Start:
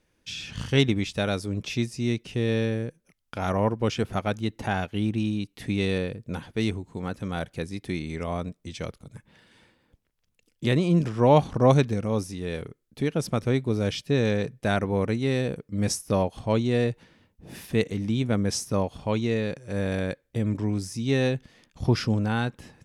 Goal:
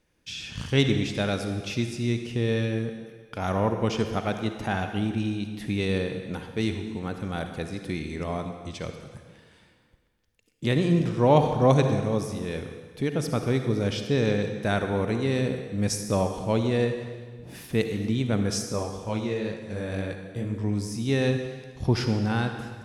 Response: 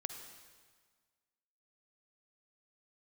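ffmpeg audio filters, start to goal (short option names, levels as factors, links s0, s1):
-filter_complex "[0:a]asettb=1/sr,asplit=3[s0][s1][s2];[s0]atrim=end=18.624[s3];[s1]atrim=start=18.62:end=20.64,asetpts=PTS-STARTPTS,afade=t=in:d=0.004:c=qsin,afade=t=out:st=2.016:d=0.004:c=qsin,flanger=delay=17.5:depth=6.9:speed=2[s4];[s2]atrim=start=20.636[s5];[s3][s4]acrossfade=d=0.004:c1=hsin:c2=qsin[s6];[s6][s5]acrossfade=d=0.004:c1=qsin:c2=hsin[s7];[1:a]atrim=start_sample=2205[s8];[s7][s8]afir=irnorm=-1:irlink=0,volume=1.12"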